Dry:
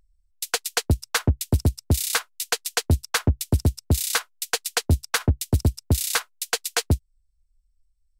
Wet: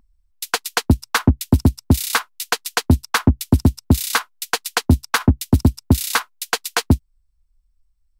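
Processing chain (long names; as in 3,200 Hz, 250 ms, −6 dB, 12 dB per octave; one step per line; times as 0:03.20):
graphic EQ with 10 bands 250 Hz +10 dB, 500 Hz −5 dB, 1,000 Hz +7 dB, 8,000 Hz −4 dB
level +3.5 dB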